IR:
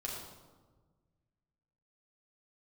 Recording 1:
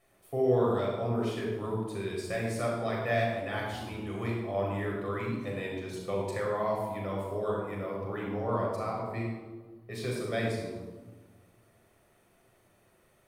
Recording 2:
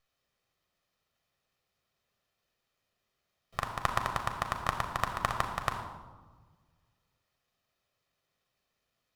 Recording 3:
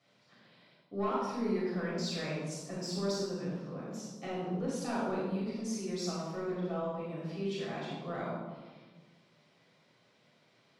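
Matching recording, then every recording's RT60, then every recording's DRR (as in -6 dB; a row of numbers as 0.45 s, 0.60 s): 1; 1.4 s, 1.4 s, 1.4 s; -3.5 dB, 4.5 dB, -7.5 dB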